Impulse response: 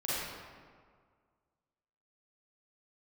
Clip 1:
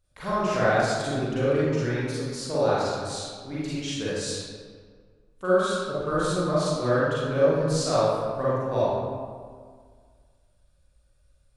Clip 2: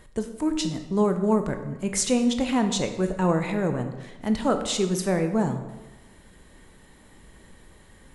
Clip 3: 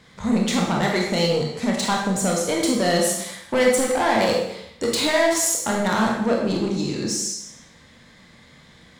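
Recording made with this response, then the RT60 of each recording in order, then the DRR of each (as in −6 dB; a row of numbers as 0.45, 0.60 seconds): 1; 1.8, 1.1, 0.80 seconds; −10.5, 6.5, −1.5 decibels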